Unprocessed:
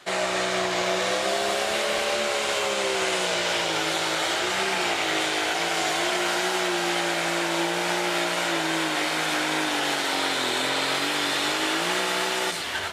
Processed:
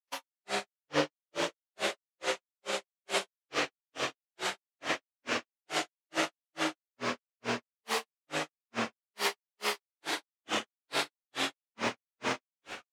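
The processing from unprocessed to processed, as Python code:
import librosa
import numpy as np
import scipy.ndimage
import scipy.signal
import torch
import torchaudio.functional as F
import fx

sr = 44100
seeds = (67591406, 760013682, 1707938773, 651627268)

y = fx.low_shelf(x, sr, hz=65.0, db=-11.5)
y = y + 10.0 ** (-8.5 / 20.0) * np.pad(y, (int(366 * sr / 1000.0), 0))[:len(y)]
y = fx.granulator(y, sr, seeds[0], grain_ms=242.0, per_s=2.3, spray_ms=100.0, spread_st=7)
y = fx.upward_expand(y, sr, threshold_db=-46.0, expansion=2.5)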